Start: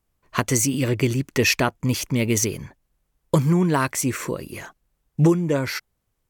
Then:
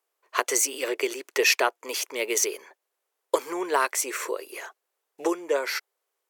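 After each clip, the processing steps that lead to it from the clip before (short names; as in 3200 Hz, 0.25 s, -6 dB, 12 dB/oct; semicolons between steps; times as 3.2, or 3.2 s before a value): elliptic high-pass 400 Hz, stop band 80 dB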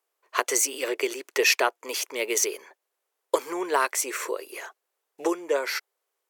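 nothing audible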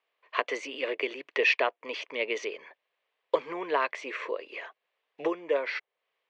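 speaker cabinet 110–3200 Hz, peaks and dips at 150 Hz +9 dB, 370 Hz -8 dB, 840 Hz -6 dB, 1400 Hz -9 dB; mismatched tape noise reduction encoder only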